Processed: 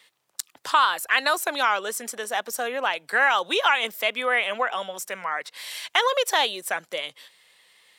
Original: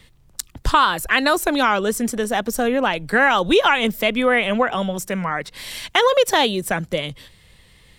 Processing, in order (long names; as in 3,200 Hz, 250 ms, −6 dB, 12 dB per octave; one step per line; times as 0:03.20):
high-pass filter 670 Hz 12 dB per octave
level −3 dB